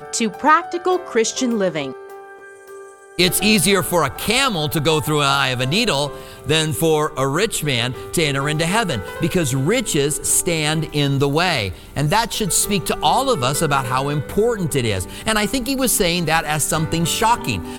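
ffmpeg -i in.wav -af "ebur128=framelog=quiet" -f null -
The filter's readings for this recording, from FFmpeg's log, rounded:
Integrated loudness:
  I:         -18.1 LUFS
  Threshold: -28.4 LUFS
Loudness range:
  LRA:         2.0 LU
  Threshold: -38.4 LUFS
  LRA low:   -19.2 LUFS
  LRA high:  -17.2 LUFS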